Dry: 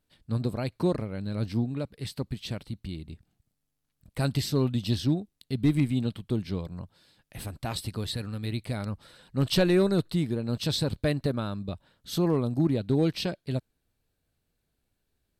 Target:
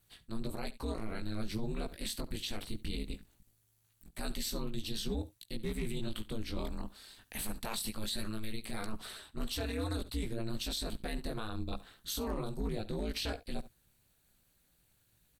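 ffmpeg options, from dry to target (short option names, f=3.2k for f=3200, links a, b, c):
-filter_complex "[0:a]flanger=delay=16:depth=4.2:speed=0.21,acrossover=split=690[a][b];[b]acontrast=87[c];[a][c]amix=inputs=2:normalize=0,aeval=exprs='val(0)*sin(2*PI*110*n/s)':c=same,lowshelf=f=67:g=10,areverse,acompressor=threshold=-35dB:ratio=5,areverse,highshelf=f=6.7k:g=9.5,bandreject=f=5.1k:w=12,aecho=1:1:70:0.0944,alimiter=level_in=7dB:limit=-24dB:level=0:latency=1:release=58,volume=-7dB,volume=5dB"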